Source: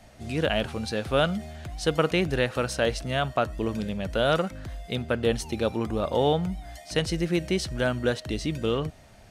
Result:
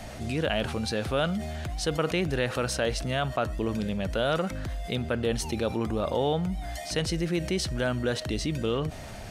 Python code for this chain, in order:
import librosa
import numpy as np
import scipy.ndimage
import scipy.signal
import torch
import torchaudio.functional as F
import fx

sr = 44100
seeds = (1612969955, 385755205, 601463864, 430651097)

y = fx.env_flatten(x, sr, amount_pct=50)
y = y * 10.0 ** (-5.0 / 20.0)